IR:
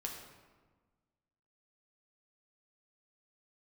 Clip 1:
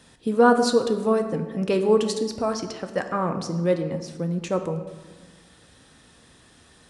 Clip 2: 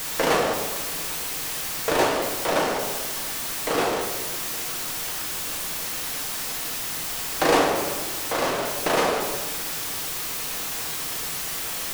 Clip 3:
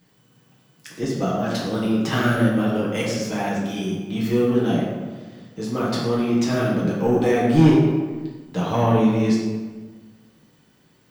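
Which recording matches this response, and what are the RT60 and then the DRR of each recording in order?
2; 1.4 s, 1.4 s, 1.4 s; 6.0 dB, -0.5 dB, -6.0 dB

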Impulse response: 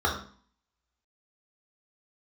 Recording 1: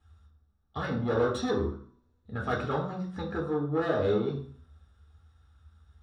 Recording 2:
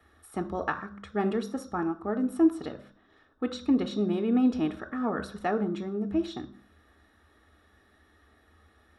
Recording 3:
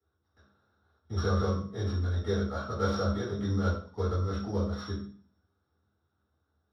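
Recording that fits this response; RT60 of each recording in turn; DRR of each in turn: 1; 0.45 s, 0.45 s, 0.45 s; -2.5 dB, 7.5 dB, -11.0 dB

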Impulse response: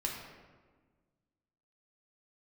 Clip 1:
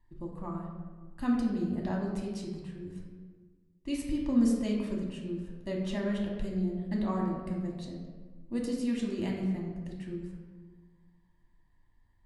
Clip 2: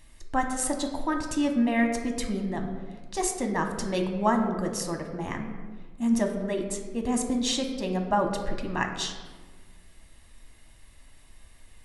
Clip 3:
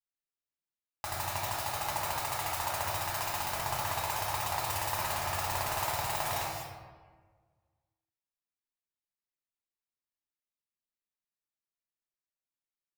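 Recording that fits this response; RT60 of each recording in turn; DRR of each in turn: 1; 1.5 s, 1.5 s, 1.5 s; -1.5 dB, 3.5 dB, -7.5 dB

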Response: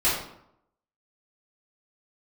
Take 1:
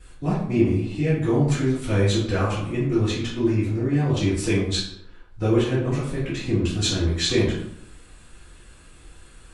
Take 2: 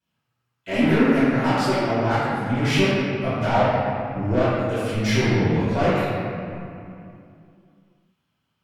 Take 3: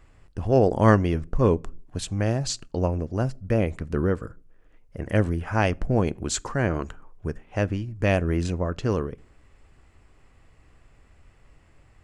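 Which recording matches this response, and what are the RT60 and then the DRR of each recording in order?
1; 0.75 s, 2.6 s, 0.55 s; -10.5 dB, -17.5 dB, 19.5 dB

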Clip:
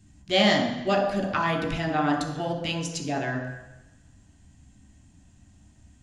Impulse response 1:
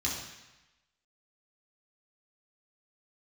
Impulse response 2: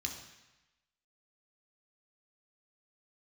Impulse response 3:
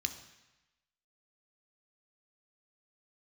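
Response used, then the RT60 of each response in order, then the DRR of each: 2; 1.0 s, 1.0 s, 1.0 s; -6.0 dB, 0.5 dB, 6.0 dB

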